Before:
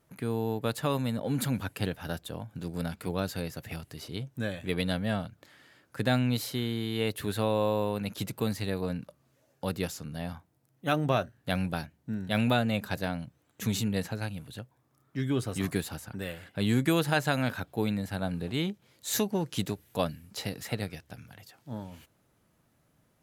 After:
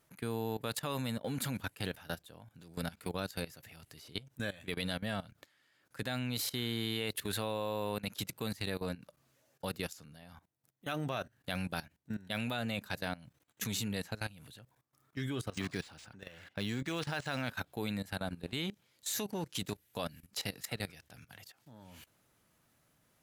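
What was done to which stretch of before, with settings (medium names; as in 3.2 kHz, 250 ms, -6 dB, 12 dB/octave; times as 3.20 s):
15.48–17.48 s: decimation joined by straight lines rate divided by 3×
whole clip: tilt shelf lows -4 dB; level held to a coarse grid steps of 18 dB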